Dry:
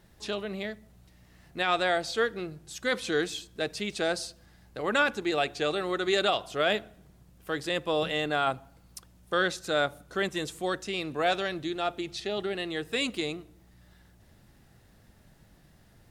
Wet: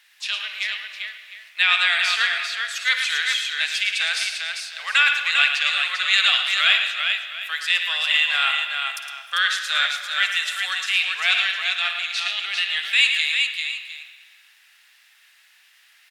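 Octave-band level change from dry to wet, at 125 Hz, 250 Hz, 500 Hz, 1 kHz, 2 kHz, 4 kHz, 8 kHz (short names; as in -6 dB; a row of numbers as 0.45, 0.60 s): under -40 dB, under -35 dB, -18.0 dB, +2.0 dB, +13.0 dB, +14.5 dB, +9.0 dB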